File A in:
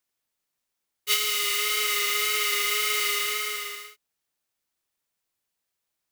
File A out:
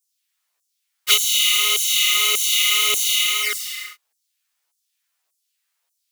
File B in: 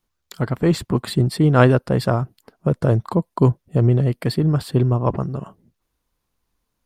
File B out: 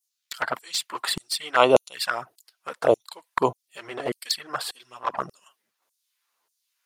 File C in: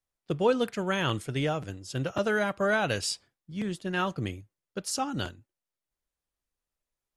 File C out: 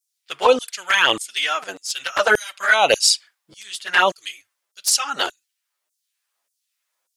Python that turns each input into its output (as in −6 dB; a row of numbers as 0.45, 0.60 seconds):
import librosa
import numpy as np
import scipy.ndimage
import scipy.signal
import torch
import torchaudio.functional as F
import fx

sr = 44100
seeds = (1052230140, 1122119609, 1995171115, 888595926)

y = fx.filter_lfo_highpass(x, sr, shape='saw_down', hz=1.7, low_hz=530.0, high_hz=7700.0, q=1.2)
y = fx.env_flanger(y, sr, rest_ms=11.8, full_db=-24.0)
y = y * 10.0 ** (-1.5 / 20.0) / np.max(np.abs(y))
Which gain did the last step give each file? +11.0, +7.0, +17.5 decibels